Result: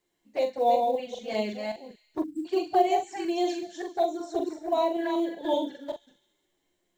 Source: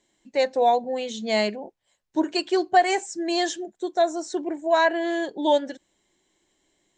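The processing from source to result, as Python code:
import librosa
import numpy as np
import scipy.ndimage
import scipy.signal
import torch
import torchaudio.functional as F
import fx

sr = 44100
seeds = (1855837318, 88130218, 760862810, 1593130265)

p1 = fx.reverse_delay(x, sr, ms=191, wet_db=-4.0)
p2 = fx.peak_eq(p1, sr, hz=470.0, db=3.0, octaves=0.22)
p3 = fx.comb_fb(p2, sr, f0_hz=350.0, decay_s=0.15, harmonics='all', damping=0.0, mix_pct=50)
p4 = p3 + fx.echo_wet_highpass(p3, sr, ms=68, feedback_pct=73, hz=3100.0, wet_db=-13.0, dry=0)
p5 = fx.env_flanger(p4, sr, rest_ms=11.4, full_db=-22.0)
p6 = fx.high_shelf(p5, sr, hz=4000.0, db=-9.0)
p7 = fx.doubler(p6, sr, ms=42.0, db=-6.5)
p8 = fx.spec_erase(p7, sr, start_s=2.23, length_s=0.23, low_hz=330.0, high_hz=7500.0)
y = fx.quant_companded(p8, sr, bits=8)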